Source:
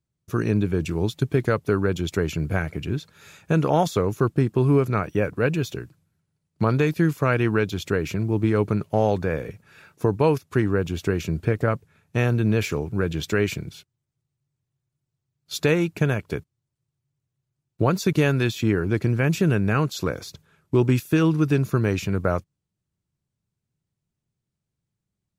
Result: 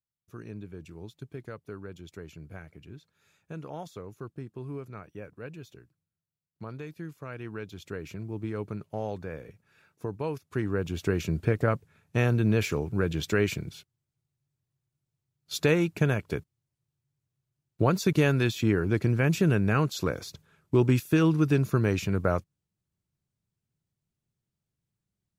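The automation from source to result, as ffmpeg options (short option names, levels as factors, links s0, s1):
-af "volume=0.708,afade=t=in:st=7.28:d=0.81:silence=0.473151,afade=t=in:st=10.33:d=0.85:silence=0.316228"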